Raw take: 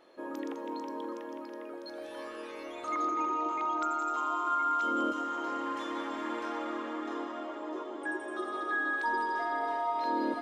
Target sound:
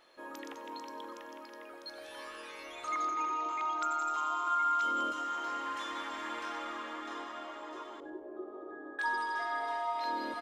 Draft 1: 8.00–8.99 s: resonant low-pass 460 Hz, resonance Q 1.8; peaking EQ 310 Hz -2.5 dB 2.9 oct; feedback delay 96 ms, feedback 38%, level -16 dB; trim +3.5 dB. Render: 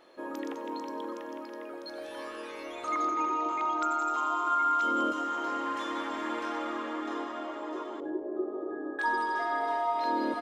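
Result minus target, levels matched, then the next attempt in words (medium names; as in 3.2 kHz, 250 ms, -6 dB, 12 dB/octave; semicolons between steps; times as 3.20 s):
250 Hz band +7.0 dB
8.00–8.99 s: resonant low-pass 460 Hz, resonance Q 1.8; peaking EQ 310 Hz -13.5 dB 2.9 oct; feedback delay 96 ms, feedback 38%, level -16 dB; trim +3.5 dB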